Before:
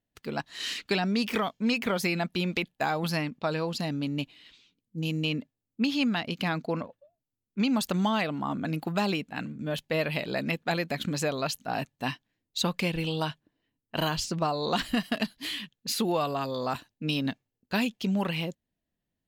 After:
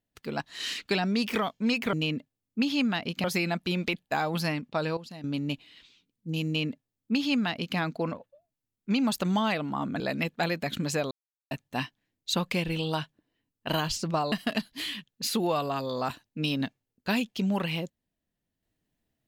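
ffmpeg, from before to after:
ffmpeg -i in.wav -filter_complex "[0:a]asplit=9[link_01][link_02][link_03][link_04][link_05][link_06][link_07][link_08][link_09];[link_01]atrim=end=1.932[link_10];[link_02]atrim=start=5.148:end=6.462[link_11];[link_03]atrim=start=1.928:end=3.662[link_12];[link_04]atrim=start=3.658:end=3.932,asetpts=PTS-STARTPTS,volume=-12dB[link_13];[link_05]atrim=start=3.928:end=8.692[link_14];[link_06]atrim=start=10.278:end=11.39,asetpts=PTS-STARTPTS,afade=type=out:start_time=1.108:duration=0.004:curve=hsin[link_15];[link_07]atrim=start=11.39:end=11.79,asetpts=PTS-STARTPTS,volume=0[link_16];[link_08]atrim=start=11.79:end=14.602,asetpts=PTS-STARTPTS,afade=type=in:duration=0.004:curve=hsin[link_17];[link_09]atrim=start=14.968[link_18];[link_10][link_11]acrossfade=duration=0.004:curve1=hsin:curve2=hsin[link_19];[link_19][link_12]acrossfade=duration=0.004:curve1=hsin:curve2=hsin[link_20];[link_20][link_13]acrossfade=duration=0.004:curve1=hsin:curve2=hsin[link_21];[link_21][link_14]acrossfade=duration=0.004:curve1=hsin:curve2=hsin[link_22];[link_15][link_16][link_17]concat=n=3:v=0:a=1[link_23];[link_22][link_23]acrossfade=duration=0.004:curve1=hsin:curve2=hsin[link_24];[link_24][link_18]acrossfade=duration=0.004:curve1=hsin:curve2=hsin" out.wav

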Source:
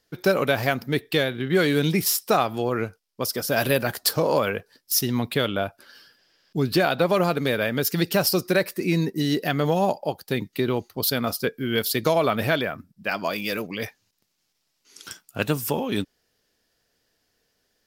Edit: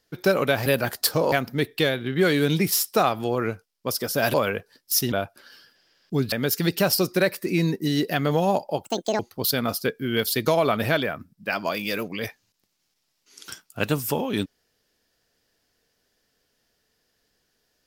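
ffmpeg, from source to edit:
ffmpeg -i in.wav -filter_complex "[0:a]asplit=8[link_01][link_02][link_03][link_04][link_05][link_06][link_07][link_08];[link_01]atrim=end=0.662[link_09];[link_02]atrim=start=3.678:end=4.342[link_10];[link_03]atrim=start=0.658:end=3.682[link_11];[link_04]atrim=start=4.338:end=5.122[link_12];[link_05]atrim=start=5.548:end=6.752[link_13];[link_06]atrim=start=7.658:end=10.194[link_14];[link_07]atrim=start=10.19:end=10.78,asetpts=PTS-STARTPTS,asetrate=75852,aresample=44100,atrim=end_sample=15127,asetpts=PTS-STARTPTS[link_15];[link_08]atrim=start=10.776[link_16];[link_09][link_10]acrossfade=duration=0.004:curve1=hsin:curve2=hsin[link_17];[link_17][link_11]acrossfade=duration=0.004:curve1=hsin:curve2=hsin[link_18];[link_18][link_12]acrossfade=duration=0.004:curve1=hsin:curve2=hsin[link_19];[link_19][link_13]acrossfade=duration=0.004:curve1=hsin:curve2=hsin[link_20];[link_20][link_14]acrossfade=duration=0.004:curve1=hsin:curve2=hsin[link_21];[link_21][link_15]acrossfade=duration=0.004:curve1=hsin:curve2=hsin[link_22];[link_22][link_16]acrossfade=duration=0.004:curve1=hsin:curve2=hsin" out.wav

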